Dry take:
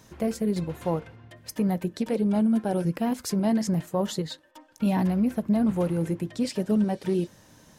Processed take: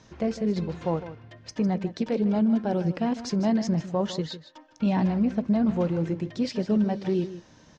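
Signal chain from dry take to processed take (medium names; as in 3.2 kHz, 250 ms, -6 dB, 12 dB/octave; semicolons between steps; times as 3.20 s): steep low-pass 6.3 kHz 36 dB/octave; on a send: delay 154 ms -13.5 dB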